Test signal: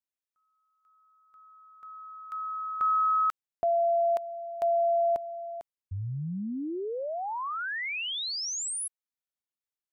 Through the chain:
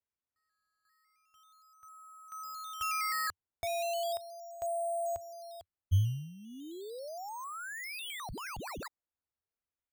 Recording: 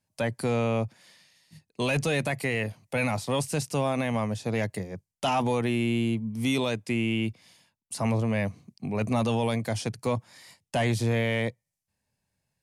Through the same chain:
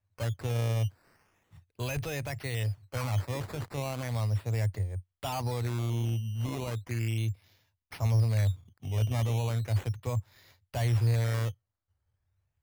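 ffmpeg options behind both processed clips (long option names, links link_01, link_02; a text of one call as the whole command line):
ffmpeg -i in.wav -af "lowshelf=frequency=130:width_type=q:width=3:gain=12.5,acrusher=samples=10:mix=1:aa=0.000001:lfo=1:lforange=10:lforate=0.36,volume=-8.5dB" out.wav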